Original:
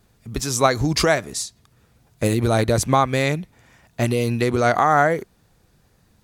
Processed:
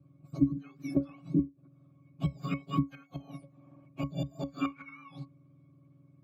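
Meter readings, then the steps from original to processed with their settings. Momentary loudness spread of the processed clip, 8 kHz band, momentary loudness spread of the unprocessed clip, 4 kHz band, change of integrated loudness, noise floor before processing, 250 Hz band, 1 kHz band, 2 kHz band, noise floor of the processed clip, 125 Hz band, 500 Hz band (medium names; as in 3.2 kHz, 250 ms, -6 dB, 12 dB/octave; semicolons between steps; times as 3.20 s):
18 LU, under -30 dB, 12 LU, -23.0 dB, -14.0 dB, -60 dBFS, -7.5 dB, -24.0 dB, -25.0 dB, -62 dBFS, -12.5 dB, -25.0 dB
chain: spectrum inverted on a logarithmic axis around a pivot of 1.3 kHz; inverted gate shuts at -11 dBFS, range -24 dB; pitch-class resonator C#, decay 0.16 s; trim +8 dB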